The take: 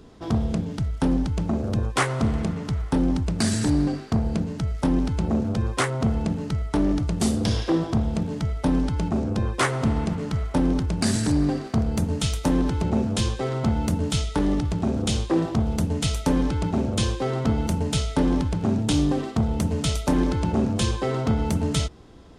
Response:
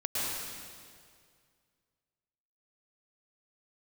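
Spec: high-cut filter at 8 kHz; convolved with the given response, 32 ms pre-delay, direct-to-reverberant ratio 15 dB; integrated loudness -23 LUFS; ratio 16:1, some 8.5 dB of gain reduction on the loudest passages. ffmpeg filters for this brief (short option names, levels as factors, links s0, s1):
-filter_complex "[0:a]lowpass=8000,acompressor=threshold=0.0562:ratio=16,asplit=2[s0][s1];[1:a]atrim=start_sample=2205,adelay=32[s2];[s1][s2]afir=irnorm=-1:irlink=0,volume=0.075[s3];[s0][s3]amix=inputs=2:normalize=0,volume=2.37"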